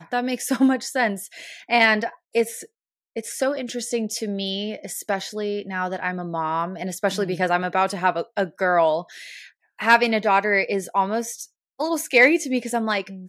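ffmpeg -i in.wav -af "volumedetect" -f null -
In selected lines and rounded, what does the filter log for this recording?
mean_volume: -23.3 dB
max_volume: -3.0 dB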